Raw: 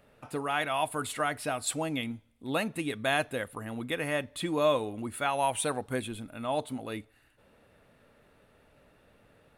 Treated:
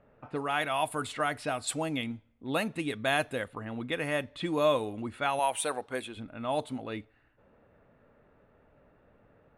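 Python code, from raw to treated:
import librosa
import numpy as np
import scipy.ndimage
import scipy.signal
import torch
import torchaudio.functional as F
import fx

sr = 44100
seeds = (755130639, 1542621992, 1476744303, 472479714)

y = fx.env_lowpass(x, sr, base_hz=1500.0, full_db=-26.0)
y = fx.bass_treble(y, sr, bass_db=-14, treble_db=-1, at=(5.39, 6.17))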